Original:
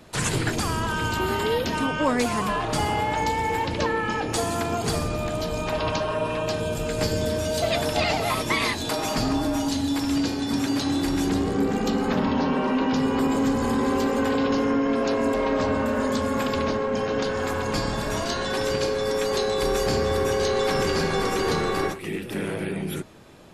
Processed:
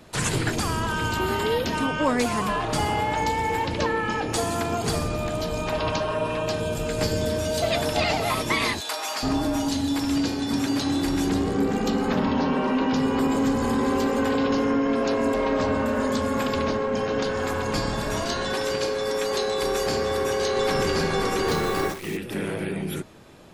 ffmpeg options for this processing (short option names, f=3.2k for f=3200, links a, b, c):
-filter_complex "[0:a]asplit=3[a][b][c];[a]afade=t=out:st=8.79:d=0.02[d];[b]highpass=810,afade=t=in:st=8.79:d=0.02,afade=t=out:st=9.22:d=0.02[e];[c]afade=t=in:st=9.22:d=0.02[f];[d][e][f]amix=inputs=3:normalize=0,asettb=1/sr,asplit=3[g][h][i];[g]atrim=end=18.554[j];[h]atrim=start=18.55:end=20.57,asetpts=PTS-STARTPTS,afade=t=in:d=0.004:c=qsin,afade=t=out:st=2.016:d=0.004:c=qsin,lowshelf=f=190:g=-8.5[k];[i]atrim=start=20.566[l];[j][k]acrossfade=d=0.004:c1=hsin:c2=qsin[m];[m][l]acrossfade=d=0.004:c1=qsin:c2=hsin,asettb=1/sr,asplit=3[n][o][p];[n]atrim=end=21.484[q];[o]atrim=start=21.48:end=22.17,asetpts=PTS-STARTPTS,afade=t=in:d=0.004:c=qsin,afade=t=out:st=0.686:d=0.004:c=qsin,acrusher=bits=7:dc=4:mix=0:aa=0.000001[r];[p]atrim=start=22.166[s];[q][r]acrossfade=d=0.004:c1=hsin:c2=qsin[t];[t][s]acrossfade=d=0.004:c1=qsin:c2=hsin"